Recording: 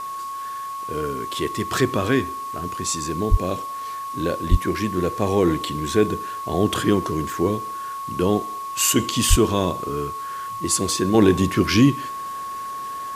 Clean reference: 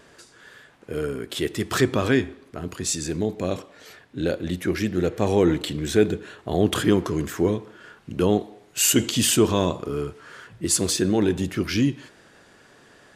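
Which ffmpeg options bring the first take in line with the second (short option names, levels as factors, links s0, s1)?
-filter_complex "[0:a]bandreject=f=1100:w=30,asplit=3[s0][s1][s2];[s0]afade=t=out:st=3.3:d=0.02[s3];[s1]highpass=f=140:w=0.5412,highpass=f=140:w=1.3066,afade=t=in:st=3.3:d=0.02,afade=t=out:st=3.42:d=0.02[s4];[s2]afade=t=in:st=3.42:d=0.02[s5];[s3][s4][s5]amix=inputs=3:normalize=0,asplit=3[s6][s7][s8];[s6]afade=t=out:st=4.5:d=0.02[s9];[s7]highpass=f=140:w=0.5412,highpass=f=140:w=1.3066,afade=t=in:st=4.5:d=0.02,afade=t=out:st=4.62:d=0.02[s10];[s8]afade=t=in:st=4.62:d=0.02[s11];[s9][s10][s11]amix=inputs=3:normalize=0,asplit=3[s12][s13][s14];[s12]afade=t=out:st=9.29:d=0.02[s15];[s13]highpass=f=140:w=0.5412,highpass=f=140:w=1.3066,afade=t=in:st=9.29:d=0.02,afade=t=out:st=9.41:d=0.02[s16];[s14]afade=t=in:st=9.41:d=0.02[s17];[s15][s16][s17]amix=inputs=3:normalize=0,afwtdn=0.0056,asetnsamples=n=441:p=0,asendcmd='11.14 volume volume -6dB',volume=1"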